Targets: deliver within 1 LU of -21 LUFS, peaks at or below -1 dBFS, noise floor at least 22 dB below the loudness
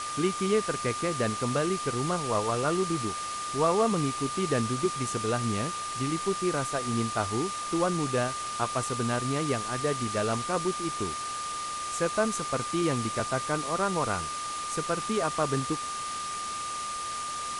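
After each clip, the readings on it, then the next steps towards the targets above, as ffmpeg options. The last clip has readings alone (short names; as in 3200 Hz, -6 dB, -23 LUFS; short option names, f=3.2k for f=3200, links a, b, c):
steady tone 1200 Hz; tone level -33 dBFS; noise floor -35 dBFS; noise floor target -51 dBFS; loudness -29.0 LUFS; peak -13.0 dBFS; loudness target -21.0 LUFS
-> -af "bandreject=f=1.2k:w=30"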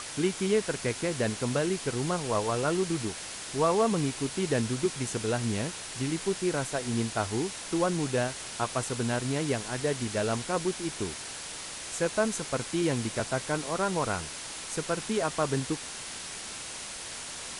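steady tone none; noise floor -40 dBFS; noise floor target -53 dBFS
-> -af "afftdn=nr=13:nf=-40"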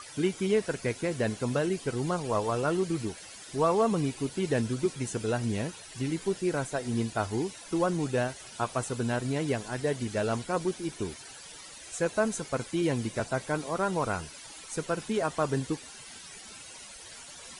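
noise floor -47 dBFS; noise floor target -53 dBFS
-> -af "afftdn=nr=6:nf=-47"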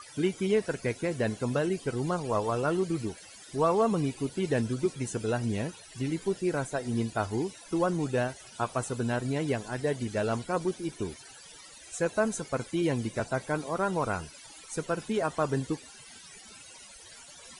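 noise floor -50 dBFS; noise floor target -53 dBFS
-> -af "afftdn=nr=6:nf=-50"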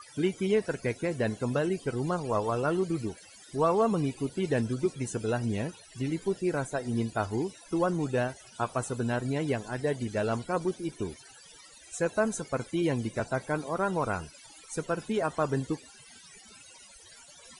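noise floor -53 dBFS; loudness -31.0 LUFS; peak -13.5 dBFS; loudness target -21.0 LUFS
-> -af "volume=10dB"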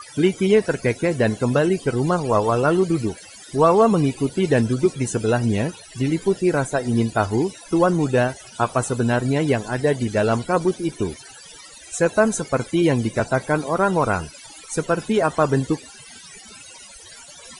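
loudness -21.0 LUFS; peak -3.5 dBFS; noise floor -43 dBFS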